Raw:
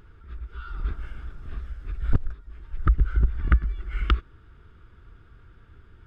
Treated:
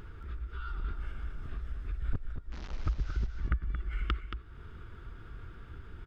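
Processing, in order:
0:02.52–0:03.27: linear delta modulator 32 kbit/s, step −37 dBFS
downward compressor 2 to 1, threshold −46 dBFS, peak gain reduction 18 dB
single-tap delay 226 ms −8 dB
level +5 dB

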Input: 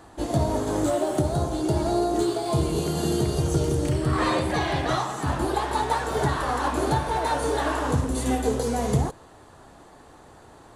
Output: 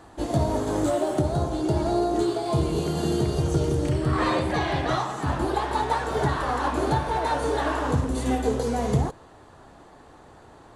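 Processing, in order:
high-shelf EQ 8,000 Hz −5 dB, from 0:01.14 −10.5 dB

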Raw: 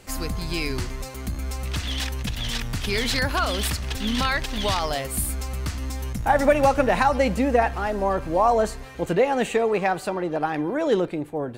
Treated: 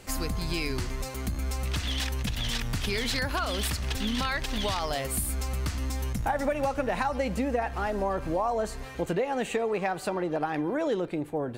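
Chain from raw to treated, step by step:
downward compressor 4 to 1, threshold −26 dBFS, peak gain reduction 11.5 dB

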